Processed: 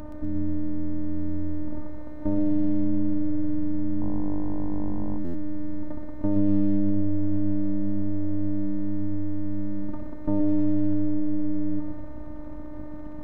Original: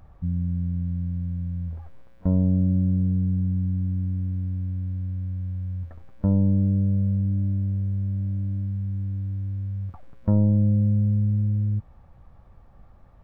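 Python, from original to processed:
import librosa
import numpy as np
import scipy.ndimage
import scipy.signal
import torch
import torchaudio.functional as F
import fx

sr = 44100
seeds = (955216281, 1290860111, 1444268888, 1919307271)

y = fx.bin_compress(x, sr, power=0.4)
y = fx.vibrato(y, sr, rate_hz=0.95, depth_cents=24.0)
y = fx.robotise(y, sr, hz=302.0)
y = np.sign(y) * np.maximum(np.abs(y) - 10.0 ** (-48.0 / 20.0), 0.0)
y = fx.echo_feedback(y, sr, ms=123, feedback_pct=44, wet_db=-6.5)
y = fx.dmg_buzz(y, sr, base_hz=50.0, harmonics=21, level_db=-37.0, tilt_db=-4, odd_only=False, at=(4.0, 5.17), fade=0.02)
y = fx.buffer_glitch(y, sr, at_s=(5.24,), block=512, repeats=8)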